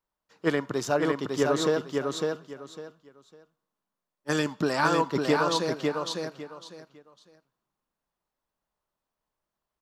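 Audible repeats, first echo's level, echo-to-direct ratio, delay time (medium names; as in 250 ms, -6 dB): 3, -3.5 dB, -3.5 dB, 553 ms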